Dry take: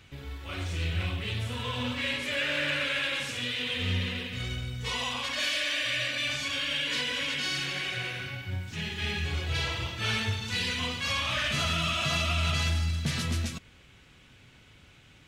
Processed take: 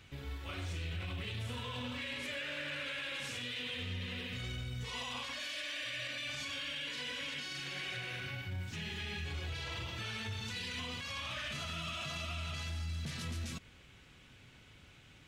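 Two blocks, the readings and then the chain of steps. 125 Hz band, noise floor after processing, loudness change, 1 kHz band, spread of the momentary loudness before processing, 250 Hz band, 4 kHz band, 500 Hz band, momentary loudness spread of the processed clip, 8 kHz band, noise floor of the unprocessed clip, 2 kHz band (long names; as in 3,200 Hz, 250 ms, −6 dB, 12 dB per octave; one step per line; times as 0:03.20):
−9.5 dB, −59 dBFS, −10.0 dB, −10.0 dB, 8 LU, −9.5 dB, −10.0 dB, −10.0 dB, 6 LU, −10.0 dB, −56 dBFS, −10.0 dB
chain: brickwall limiter −29.5 dBFS, peak gain reduction 11.5 dB
level −3 dB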